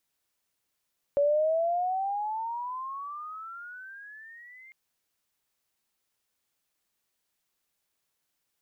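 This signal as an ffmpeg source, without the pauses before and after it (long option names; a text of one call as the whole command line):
ffmpeg -f lavfi -i "aevalsrc='pow(10,(-20-28*t/3.55)/20)*sin(2*PI*564*3.55/(23*log(2)/12)*(exp(23*log(2)/12*t/3.55)-1))':duration=3.55:sample_rate=44100" out.wav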